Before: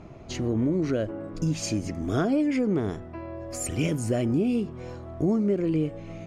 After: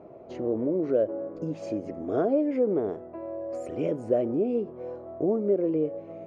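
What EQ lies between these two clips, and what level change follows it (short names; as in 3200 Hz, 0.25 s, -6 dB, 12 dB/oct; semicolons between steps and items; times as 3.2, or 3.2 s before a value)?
band-pass 520 Hz, Q 2.3; +6.5 dB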